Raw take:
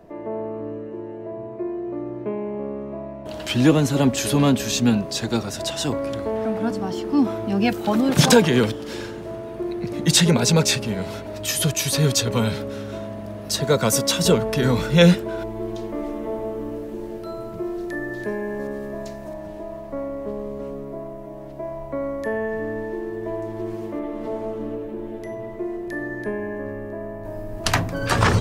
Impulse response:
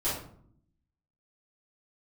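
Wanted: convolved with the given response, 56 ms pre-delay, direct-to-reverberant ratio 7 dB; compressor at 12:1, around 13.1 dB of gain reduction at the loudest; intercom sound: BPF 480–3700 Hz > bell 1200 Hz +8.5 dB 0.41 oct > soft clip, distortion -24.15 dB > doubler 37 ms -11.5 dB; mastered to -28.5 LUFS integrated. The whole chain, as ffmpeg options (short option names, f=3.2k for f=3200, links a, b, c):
-filter_complex "[0:a]acompressor=threshold=-22dB:ratio=12,asplit=2[a][b];[1:a]atrim=start_sample=2205,adelay=56[c];[b][c]afir=irnorm=-1:irlink=0,volume=-15dB[d];[a][d]amix=inputs=2:normalize=0,highpass=480,lowpass=3.7k,equalizer=f=1.2k:t=o:w=0.41:g=8.5,asoftclip=threshold=-17dB,asplit=2[e][f];[f]adelay=37,volume=-11.5dB[g];[e][g]amix=inputs=2:normalize=0,volume=3.5dB"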